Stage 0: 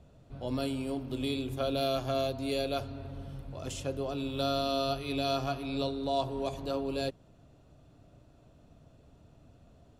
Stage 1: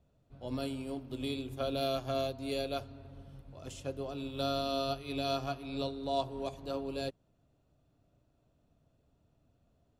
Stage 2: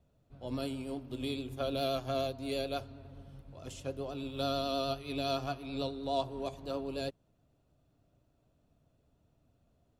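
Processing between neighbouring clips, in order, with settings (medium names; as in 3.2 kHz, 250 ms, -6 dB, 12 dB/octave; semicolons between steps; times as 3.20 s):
upward expansion 1.5:1, over -50 dBFS; trim -1.5 dB
vibrato 9.5 Hz 34 cents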